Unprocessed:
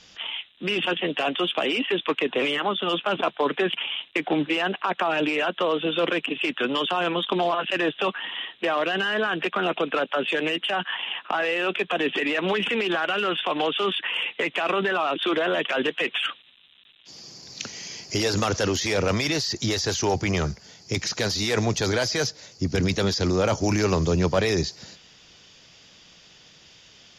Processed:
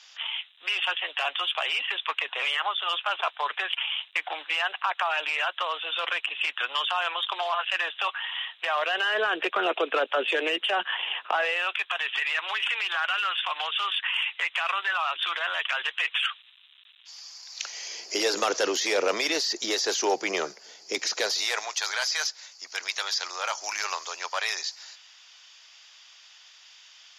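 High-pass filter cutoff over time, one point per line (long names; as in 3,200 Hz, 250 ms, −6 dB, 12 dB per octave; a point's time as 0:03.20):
high-pass filter 24 dB per octave
0:08.62 800 Hz
0:09.30 380 Hz
0:11.21 380 Hz
0:11.79 930 Hz
0:17.51 930 Hz
0:18.04 360 Hz
0:21.11 360 Hz
0:21.70 880 Hz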